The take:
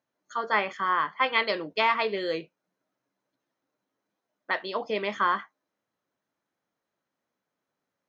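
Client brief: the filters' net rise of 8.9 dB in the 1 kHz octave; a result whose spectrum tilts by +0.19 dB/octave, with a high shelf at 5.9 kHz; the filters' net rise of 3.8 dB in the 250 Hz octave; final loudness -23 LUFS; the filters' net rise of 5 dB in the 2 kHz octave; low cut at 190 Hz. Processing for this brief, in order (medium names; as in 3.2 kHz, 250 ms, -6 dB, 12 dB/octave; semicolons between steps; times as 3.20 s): high-pass 190 Hz; peaking EQ 250 Hz +6.5 dB; peaking EQ 1 kHz +9 dB; peaking EQ 2 kHz +3.5 dB; treble shelf 5.9 kHz -3.5 dB; trim -2.5 dB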